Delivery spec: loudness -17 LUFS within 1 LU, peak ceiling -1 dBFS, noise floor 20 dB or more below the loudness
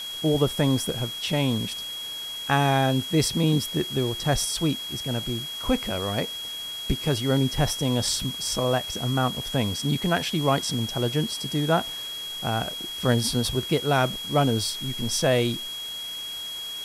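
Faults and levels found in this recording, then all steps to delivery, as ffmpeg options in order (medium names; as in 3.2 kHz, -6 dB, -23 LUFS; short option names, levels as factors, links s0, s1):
steady tone 3.3 kHz; tone level -32 dBFS; noise floor -35 dBFS; noise floor target -46 dBFS; loudness -25.5 LUFS; peak level -7.5 dBFS; loudness target -17.0 LUFS
-> -af "bandreject=f=3300:w=30"
-af "afftdn=nr=11:nf=-35"
-af "volume=2.66,alimiter=limit=0.891:level=0:latency=1"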